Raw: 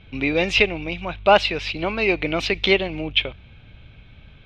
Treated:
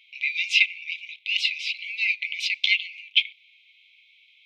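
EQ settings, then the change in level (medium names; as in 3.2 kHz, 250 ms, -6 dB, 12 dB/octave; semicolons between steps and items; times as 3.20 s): brick-wall FIR high-pass 2 kHz; 0.0 dB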